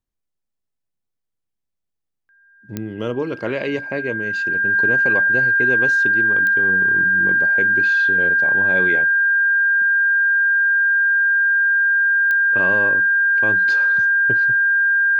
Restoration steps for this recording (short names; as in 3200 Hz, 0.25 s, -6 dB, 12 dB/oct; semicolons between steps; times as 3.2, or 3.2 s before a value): de-click; notch 1600 Hz, Q 30